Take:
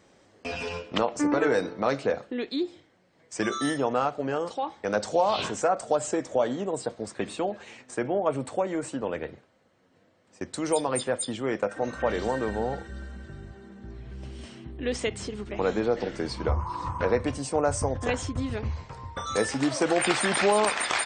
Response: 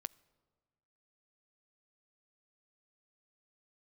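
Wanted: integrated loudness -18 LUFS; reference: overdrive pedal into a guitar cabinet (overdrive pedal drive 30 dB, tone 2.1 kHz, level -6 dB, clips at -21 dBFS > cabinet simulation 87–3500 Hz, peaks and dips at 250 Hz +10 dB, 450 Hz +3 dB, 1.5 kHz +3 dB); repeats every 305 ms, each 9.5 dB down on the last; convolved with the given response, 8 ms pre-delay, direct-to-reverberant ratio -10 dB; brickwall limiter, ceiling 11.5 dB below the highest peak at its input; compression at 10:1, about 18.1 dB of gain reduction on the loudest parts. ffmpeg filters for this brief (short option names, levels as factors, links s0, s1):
-filter_complex "[0:a]acompressor=threshold=0.0126:ratio=10,alimiter=level_in=3.98:limit=0.0631:level=0:latency=1,volume=0.251,aecho=1:1:305|610|915|1220:0.335|0.111|0.0365|0.012,asplit=2[s0][s1];[1:a]atrim=start_sample=2205,adelay=8[s2];[s1][s2]afir=irnorm=-1:irlink=0,volume=4.73[s3];[s0][s3]amix=inputs=2:normalize=0,asplit=2[s4][s5];[s5]highpass=f=720:p=1,volume=31.6,asoftclip=type=tanh:threshold=0.0891[s6];[s4][s6]amix=inputs=2:normalize=0,lowpass=f=2100:p=1,volume=0.501,highpass=87,equalizer=f=250:t=q:w=4:g=10,equalizer=f=450:t=q:w=4:g=3,equalizer=f=1500:t=q:w=4:g=3,lowpass=f=3500:w=0.5412,lowpass=f=3500:w=1.3066,volume=2.66"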